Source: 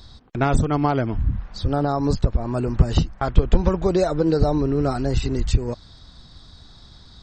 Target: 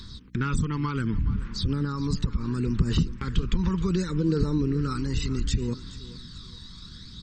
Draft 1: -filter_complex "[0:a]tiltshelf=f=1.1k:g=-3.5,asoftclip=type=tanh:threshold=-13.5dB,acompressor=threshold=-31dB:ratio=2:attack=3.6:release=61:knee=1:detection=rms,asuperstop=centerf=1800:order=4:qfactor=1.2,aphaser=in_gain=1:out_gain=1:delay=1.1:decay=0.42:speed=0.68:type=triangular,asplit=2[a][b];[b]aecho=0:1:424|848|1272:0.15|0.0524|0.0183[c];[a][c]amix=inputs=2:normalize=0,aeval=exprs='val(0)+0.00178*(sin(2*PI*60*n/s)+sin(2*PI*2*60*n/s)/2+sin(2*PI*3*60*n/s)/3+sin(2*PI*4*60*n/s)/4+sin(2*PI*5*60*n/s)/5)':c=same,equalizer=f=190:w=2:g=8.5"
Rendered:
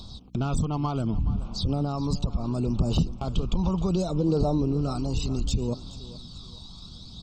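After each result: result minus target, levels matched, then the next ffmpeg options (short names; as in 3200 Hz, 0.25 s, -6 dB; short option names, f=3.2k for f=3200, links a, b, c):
2000 Hz band -11.0 dB; soft clip: distortion +15 dB
-filter_complex "[0:a]tiltshelf=f=1.1k:g=-3.5,asoftclip=type=tanh:threshold=-13.5dB,acompressor=threshold=-31dB:ratio=2:attack=3.6:release=61:knee=1:detection=rms,asuperstop=centerf=680:order=4:qfactor=1.2,aphaser=in_gain=1:out_gain=1:delay=1.1:decay=0.42:speed=0.68:type=triangular,asplit=2[a][b];[b]aecho=0:1:424|848|1272:0.15|0.0524|0.0183[c];[a][c]amix=inputs=2:normalize=0,aeval=exprs='val(0)+0.00178*(sin(2*PI*60*n/s)+sin(2*PI*2*60*n/s)/2+sin(2*PI*3*60*n/s)/3+sin(2*PI*4*60*n/s)/4+sin(2*PI*5*60*n/s)/5)':c=same,equalizer=f=190:w=2:g=8.5"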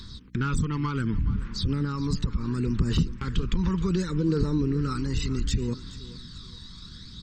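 soft clip: distortion +15 dB
-filter_complex "[0:a]tiltshelf=f=1.1k:g=-3.5,asoftclip=type=tanh:threshold=-3.5dB,acompressor=threshold=-31dB:ratio=2:attack=3.6:release=61:knee=1:detection=rms,asuperstop=centerf=680:order=4:qfactor=1.2,aphaser=in_gain=1:out_gain=1:delay=1.1:decay=0.42:speed=0.68:type=triangular,asplit=2[a][b];[b]aecho=0:1:424|848|1272:0.15|0.0524|0.0183[c];[a][c]amix=inputs=2:normalize=0,aeval=exprs='val(0)+0.00178*(sin(2*PI*60*n/s)+sin(2*PI*2*60*n/s)/2+sin(2*PI*3*60*n/s)/3+sin(2*PI*4*60*n/s)/4+sin(2*PI*5*60*n/s)/5)':c=same,equalizer=f=190:w=2:g=8.5"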